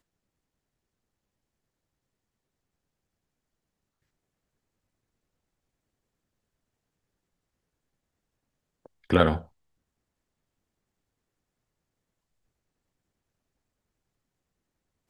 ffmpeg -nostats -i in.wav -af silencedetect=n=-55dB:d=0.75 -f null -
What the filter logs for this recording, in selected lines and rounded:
silence_start: 0.00
silence_end: 8.86 | silence_duration: 8.86
silence_start: 9.49
silence_end: 15.10 | silence_duration: 5.61